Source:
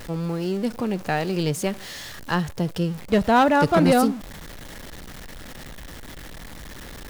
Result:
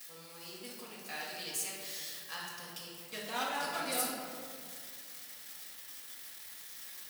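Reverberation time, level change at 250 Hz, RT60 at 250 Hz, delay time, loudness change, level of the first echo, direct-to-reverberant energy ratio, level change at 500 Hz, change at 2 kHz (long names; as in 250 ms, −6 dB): 2.2 s, −26.5 dB, 2.8 s, no echo audible, −17.5 dB, no echo audible, −7.0 dB, −21.5 dB, −12.5 dB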